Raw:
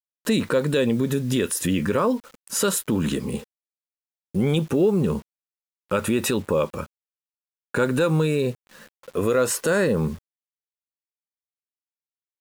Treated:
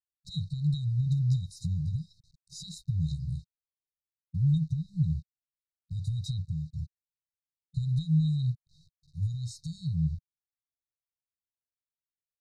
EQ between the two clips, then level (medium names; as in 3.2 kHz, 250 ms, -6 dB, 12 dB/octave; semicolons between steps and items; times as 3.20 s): brick-wall FIR band-stop 160–3700 Hz; tape spacing loss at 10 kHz 34 dB; +4.0 dB